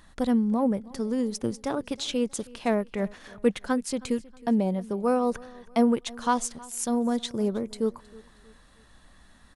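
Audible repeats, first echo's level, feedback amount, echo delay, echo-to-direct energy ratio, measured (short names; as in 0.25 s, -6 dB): 2, -22.0 dB, 38%, 0.317 s, -21.5 dB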